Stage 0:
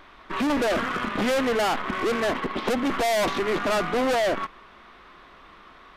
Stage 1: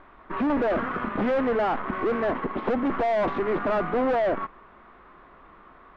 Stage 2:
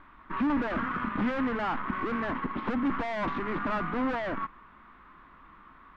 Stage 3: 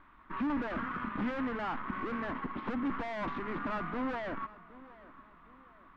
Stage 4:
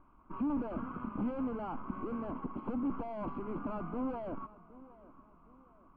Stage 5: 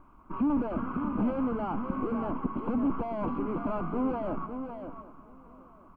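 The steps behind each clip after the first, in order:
low-pass filter 1,500 Hz 12 dB per octave
flat-topped bell 530 Hz −10 dB 1.3 octaves; level −1.5 dB
feedback echo with a low-pass in the loop 766 ms, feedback 40%, low-pass 2,500 Hz, level −18.5 dB; level −5.5 dB
moving average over 24 samples
single-tap delay 555 ms −8 dB; level +6.5 dB

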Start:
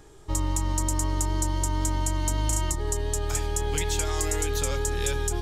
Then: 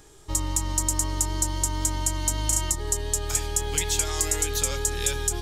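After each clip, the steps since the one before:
high-shelf EQ 2,400 Hz +9 dB
level −2.5 dB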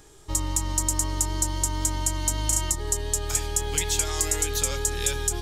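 no processing that can be heard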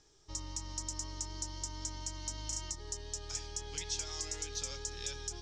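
transistor ladder low-pass 6,100 Hz, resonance 65%
level −5 dB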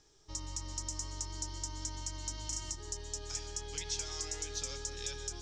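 convolution reverb RT60 0.75 s, pre-delay 112 ms, DRR 11 dB

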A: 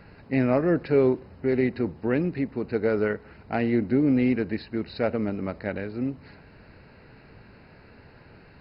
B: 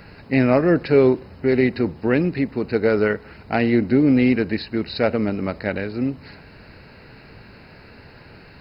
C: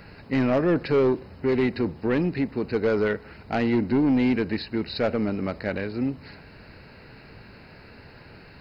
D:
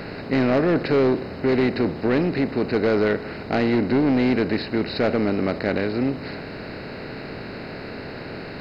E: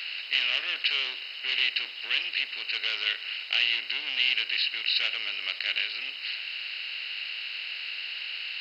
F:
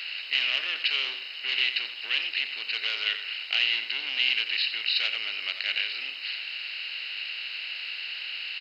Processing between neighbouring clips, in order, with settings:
high-shelf EQ 3,400 Hz +10 dB; level +5.5 dB
soft clipping −12.5 dBFS, distortion −14 dB; level −2.5 dB
compressor on every frequency bin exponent 0.6
high-pass with resonance 2,900 Hz, resonance Q 9.5
single-tap delay 88 ms −10.5 dB

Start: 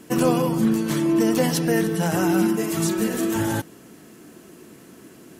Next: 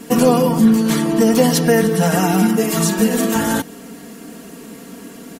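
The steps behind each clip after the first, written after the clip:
comb filter 4.3 ms, depth 97%
in parallel at +1 dB: downward compressor, threshold −24 dBFS, peak gain reduction 12.5 dB
on the sum: level +1 dB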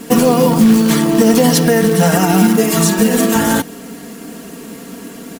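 floating-point word with a short mantissa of 2 bits
boost into a limiter +5.5 dB
level −1 dB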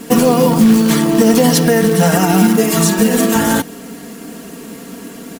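no processing that can be heard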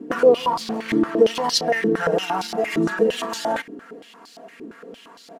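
band-pass on a step sequencer 8.7 Hz 330–4,400 Hz
level +2.5 dB

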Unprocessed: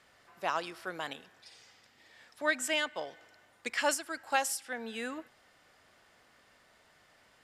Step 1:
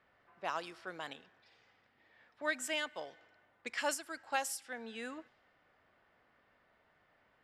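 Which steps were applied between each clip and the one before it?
low-pass that shuts in the quiet parts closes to 2,100 Hz, open at −31.5 dBFS
level −5.5 dB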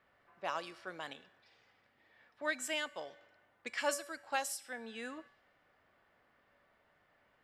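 tuned comb filter 570 Hz, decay 0.56 s, mix 70%
level +9.5 dB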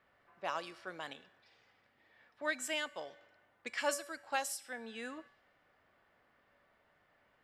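no processing that can be heard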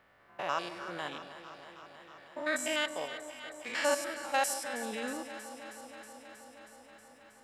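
spectrum averaged block by block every 100 ms
delay that swaps between a low-pass and a high-pass 159 ms, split 850 Hz, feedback 87%, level −11 dB
level +8 dB

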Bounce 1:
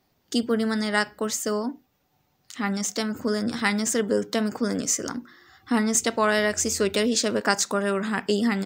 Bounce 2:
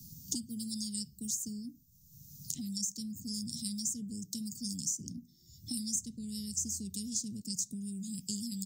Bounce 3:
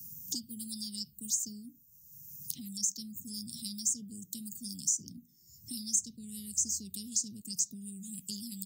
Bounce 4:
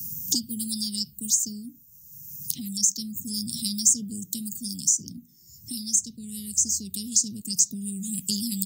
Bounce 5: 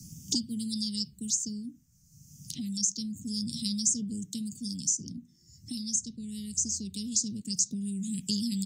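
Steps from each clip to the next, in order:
elliptic band-stop filter 170–6,200 Hz, stop band 70 dB; multiband upward and downward compressor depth 100%; level −5 dB
spectral tilt +2 dB per octave; phaser swept by the level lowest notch 570 Hz, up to 3,100 Hz, full sweep at −25.5 dBFS
speech leveller 2 s; level +9 dB
high-frequency loss of the air 85 metres

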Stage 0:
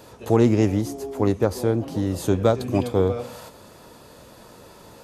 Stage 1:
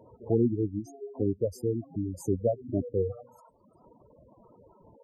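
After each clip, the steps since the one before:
reverb reduction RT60 1.1 s
flat-topped bell 2,600 Hz −10.5 dB
gate on every frequency bin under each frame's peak −10 dB strong
level −6 dB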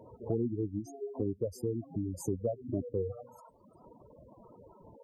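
downward compressor 2.5 to 1, threshold −34 dBFS, peak gain reduction 10 dB
level +1.5 dB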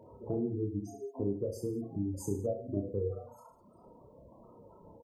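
reverse bouncing-ball delay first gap 30 ms, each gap 1.15×, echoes 5
level −2.5 dB

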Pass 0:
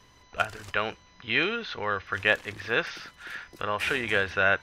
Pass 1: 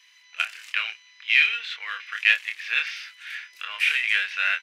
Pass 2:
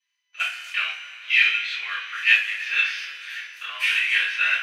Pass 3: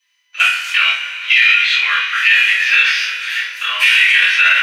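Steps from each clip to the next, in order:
gain on one half-wave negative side −3 dB; high-pass with resonance 2,300 Hz, resonance Q 2.9; double-tracking delay 26 ms −5.5 dB; level +1 dB
noise gate −51 dBFS, range −23 dB; coupled-rooms reverb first 0.31 s, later 3 s, from −19 dB, DRR −10 dB; level −8.5 dB
high-pass filter 600 Hz 6 dB per octave; on a send: flutter between parallel walls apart 4.1 metres, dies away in 0.24 s; on the sum: boost into a limiter +14.5 dB; level −1 dB

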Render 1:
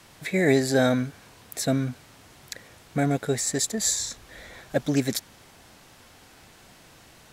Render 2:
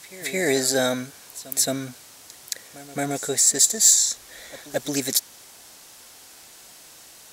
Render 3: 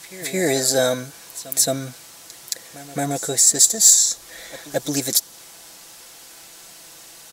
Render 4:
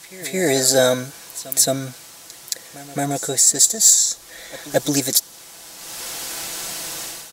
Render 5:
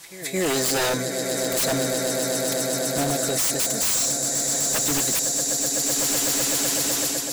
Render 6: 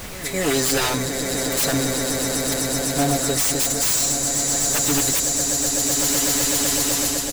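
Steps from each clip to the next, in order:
bass and treble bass −10 dB, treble +12 dB; soft clipping −4 dBFS, distortion −23 dB; backwards echo 221 ms −17 dB
dynamic equaliser 2,100 Hz, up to −5 dB, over −42 dBFS, Q 1.1; comb filter 6 ms, depth 44%; level +3 dB
automatic gain control gain up to 15 dB; level −1 dB
echo that builds up and dies away 126 ms, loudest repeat 8, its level −13 dB; automatic gain control gain up to 4 dB; wave folding −15 dBFS; level −2 dB
comb filter 7 ms, depth 82%; background noise pink −35 dBFS

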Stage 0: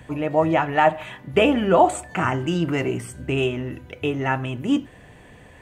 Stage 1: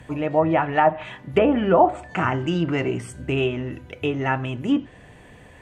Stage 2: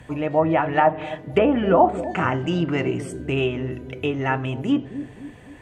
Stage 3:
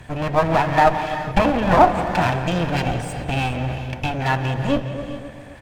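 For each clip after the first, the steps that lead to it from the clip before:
treble cut that deepens with the level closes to 1,400 Hz, closed at −12.5 dBFS
bucket-brigade delay 259 ms, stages 1,024, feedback 46%, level −11 dB
lower of the sound and its delayed copy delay 1.2 ms; far-end echo of a speakerphone 170 ms, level −13 dB; reverb whose tail is shaped and stops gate 450 ms rising, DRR 10 dB; level +4 dB

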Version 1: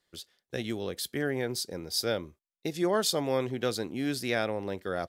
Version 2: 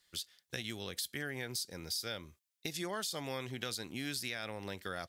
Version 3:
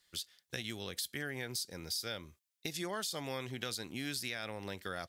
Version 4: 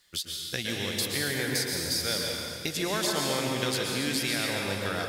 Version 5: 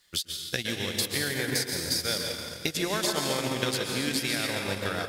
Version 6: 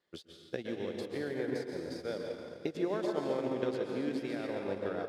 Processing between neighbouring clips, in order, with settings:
guitar amp tone stack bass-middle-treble 5-5-5; brickwall limiter −32.5 dBFS, peak gain reduction 11 dB; downward compressor 3 to 1, threshold −52 dBFS, peak gain reduction 10 dB; level +14 dB
no processing that can be heard
delay that swaps between a low-pass and a high-pass 140 ms, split 1,500 Hz, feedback 82%, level −13 dB; dense smooth reverb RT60 1.8 s, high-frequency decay 1×, pre-delay 105 ms, DRR −0.5 dB; level +7.5 dB
transient designer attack +4 dB, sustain −10 dB
resonant band-pass 410 Hz, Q 1.2

